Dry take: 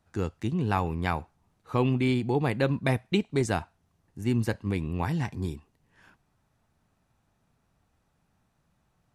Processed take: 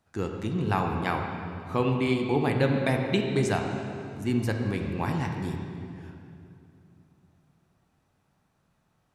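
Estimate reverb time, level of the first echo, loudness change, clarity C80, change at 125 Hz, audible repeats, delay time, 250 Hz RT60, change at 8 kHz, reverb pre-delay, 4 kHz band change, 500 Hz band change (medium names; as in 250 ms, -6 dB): 2.7 s, no echo, +0.5 dB, 4.5 dB, 0.0 dB, no echo, no echo, 3.3 s, +0.5 dB, 15 ms, +1.5 dB, +2.0 dB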